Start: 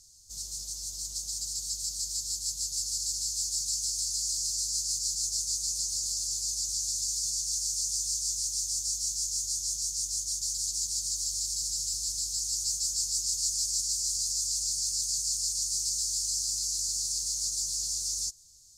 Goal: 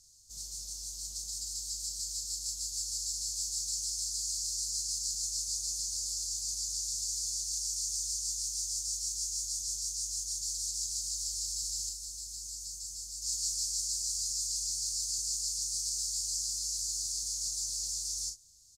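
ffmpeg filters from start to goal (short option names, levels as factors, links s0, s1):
-filter_complex "[0:a]asettb=1/sr,asplit=3[s0][s1][s2];[s0]atrim=end=11.894[s3];[s1]atrim=start=11.89:end=13.22,asetpts=PTS-STARTPTS,afade=t=in:d=0.004:c=qsin,afade=t=out:st=1.326:d=0.004:c=qsin,acrossover=split=320|7800[s4][s5][s6];[s4]acompressor=threshold=0.00251:ratio=4[s7];[s5]acompressor=threshold=0.00891:ratio=4[s8];[s6]acompressor=threshold=0.00794:ratio=4[s9];[s7][s8][s9]amix=inputs=3:normalize=0[s10];[s2]atrim=start=13.216[s11];[s3][s10]acrossfade=d=0.004:c1=hsin:c2=qsin[s12];[s12][s11]acrossfade=d=0.004:c1=qsin:c2=hsin,aecho=1:1:36|58:0.501|0.251,volume=0.562"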